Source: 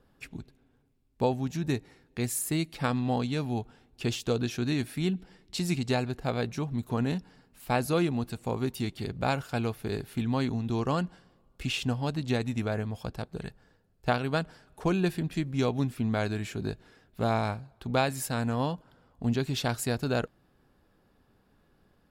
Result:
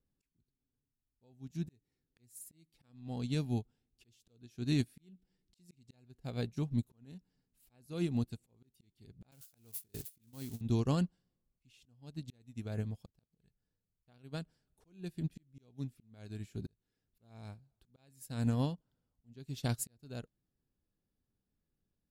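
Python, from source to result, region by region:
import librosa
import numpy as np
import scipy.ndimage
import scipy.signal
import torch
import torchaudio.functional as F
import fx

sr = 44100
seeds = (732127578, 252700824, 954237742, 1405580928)

y = fx.chain(x, sr, fx.crossing_spikes(level_db=-23.5),
    fx.gate_hold(open_db=-20.0, close_db=-24.0, hold_ms=71.0, range_db=-21, attack_ms=1.4, release_ms=100.0), at=(9.31, 10.61))
y = fx.peak_eq(y, sr, hz=1100.0, db=-13.0, octaves=3.0)
y = fx.auto_swell(y, sr, attack_ms=489.0)
y = fx.upward_expand(y, sr, threshold_db=-44.0, expansion=2.5)
y = y * 10.0 ** (4.0 / 20.0)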